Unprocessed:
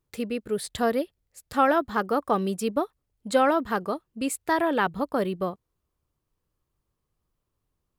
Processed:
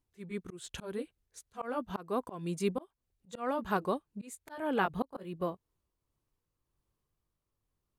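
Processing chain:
pitch glide at a constant tempo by −3 semitones ending unshifted
volume swells 326 ms
level −3 dB

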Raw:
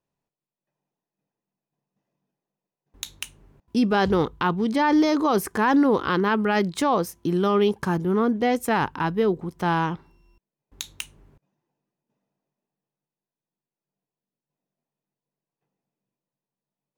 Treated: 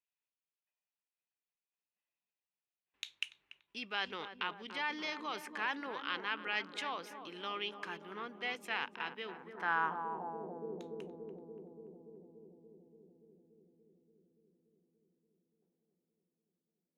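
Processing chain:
feedback echo with a low-pass in the loop 288 ms, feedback 82%, low-pass 990 Hz, level −8 dB
band-pass filter sweep 2,600 Hz → 480 Hz, 0:09.30–0:10.67
level −2.5 dB

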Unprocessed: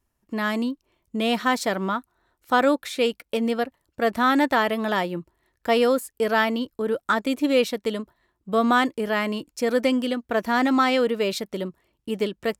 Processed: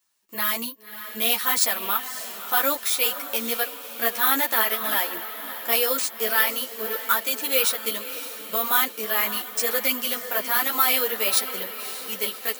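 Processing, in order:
bad sample-rate conversion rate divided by 3×, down none, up hold
low-shelf EQ 480 Hz −10 dB
in parallel at +3 dB: brickwall limiter −17 dBFS, peak gain reduction 8.5 dB
on the sum: RIAA equalisation recording
on a send: feedback delay with all-pass diffusion 573 ms, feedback 53%, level −11.5 dB
on the sum: string-ensemble chorus
level −4 dB

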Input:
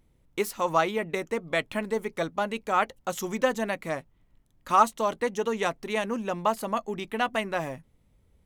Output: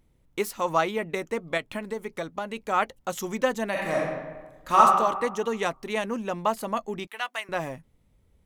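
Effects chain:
0:01.57–0:02.57: downward compressor, threshold −28 dBFS, peak gain reduction 6 dB
0:03.70–0:04.80: thrown reverb, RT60 1.3 s, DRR −4 dB
0:07.07–0:07.49: Bessel high-pass filter 1,300 Hz, order 2

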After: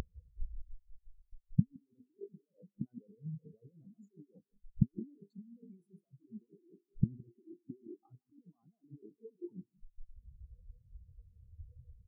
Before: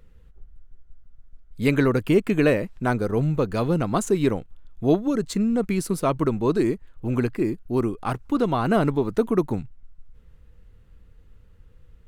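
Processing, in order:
high-pass filter 70 Hz 6 dB per octave
low-shelf EQ 100 Hz −9.5 dB
mains-hum notches 50/100/150/200/250/300/350/400/450 Hz
compressor whose output falls as the input rises −31 dBFS, ratio −1
gate with flip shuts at −29 dBFS, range −26 dB
single-tap delay 165 ms −8.5 dB
every bin expanded away from the loudest bin 4 to 1
level +16 dB

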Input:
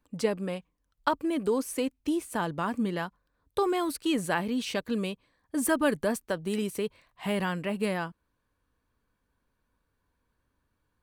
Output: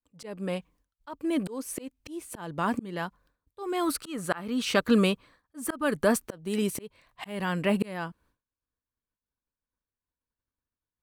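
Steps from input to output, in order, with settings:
downward expander −59 dBFS
0:03.86–0:06.21: parametric band 1,300 Hz +13 dB → +5.5 dB 0.36 octaves
volume swells 571 ms
level +8.5 dB

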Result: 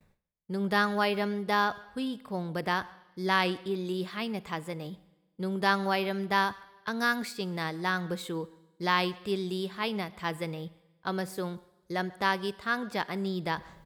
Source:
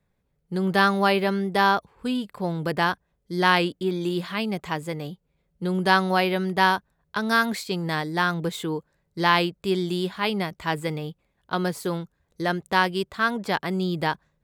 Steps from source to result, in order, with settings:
wrong playback speed 24 fps film run at 25 fps
reversed playback
upward compression, threshold −30 dBFS
reversed playback
noise gate with hold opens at −50 dBFS
far-end echo of a speakerphone 140 ms, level −23 dB
four-comb reverb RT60 1.1 s, combs from 33 ms, DRR 19 dB
level −6.5 dB

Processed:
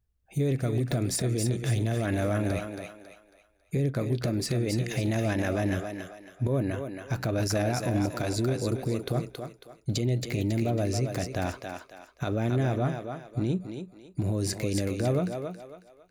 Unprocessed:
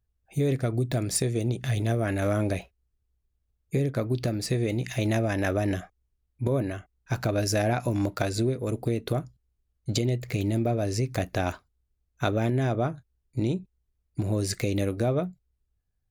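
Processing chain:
parametric band 170 Hz +3 dB 1.5 octaves
brickwall limiter −19 dBFS, peak gain reduction 9 dB
on a send: feedback echo with a high-pass in the loop 274 ms, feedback 37%, high-pass 350 Hz, level −4.5 dB

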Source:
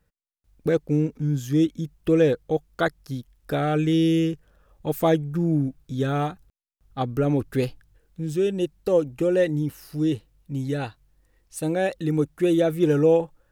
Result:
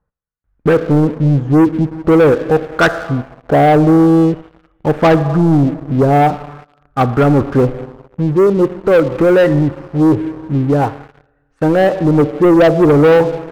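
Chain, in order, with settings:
four-comb reverb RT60 1.6 s, combs from 28 ms, DRR 13.5 dB
auto-filter low-pass sine 0.46 Hz 720–1,500 Hz
leveller curve on the samples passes 3
level +2.5 dB

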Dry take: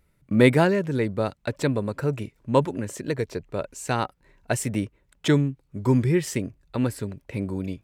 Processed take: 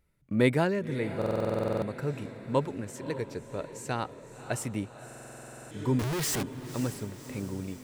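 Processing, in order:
0:05.99–0:06.43: sign of each sample alone
feedback delay with all-pass diffusion 558 ms, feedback 58%, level −12.5 dB
buffer that repeats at 0:01.17/0:05.06, samples 2,048, times 13
level −7 dB

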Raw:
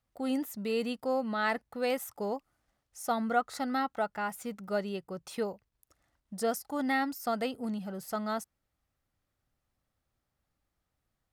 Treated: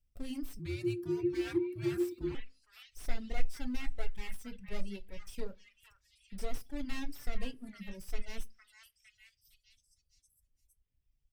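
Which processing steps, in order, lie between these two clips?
lower of the sound and its delayed copy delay 0.36 ms
in parallel at −10 dB: soft clipping −31.5 dBFS, distortion −12 dB
on the sum: parametric band 180 Hz −10 dB 1.7 octaves
echo through a band-pass that steps 458 ms, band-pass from 1,500 Hz, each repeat 0.7 octaves, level −6 dB
convolution reverb RT60 0.35 s, pre-delay 4 ms, DRR 6 dB
reverb reduction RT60 1.1 s
guitar amp tone stack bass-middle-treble 10-0-1
0:00.59–0:02.35: frequency shifter −360 Hz
slew-rate limiting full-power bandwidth 4.5 Hz
level +15 dB

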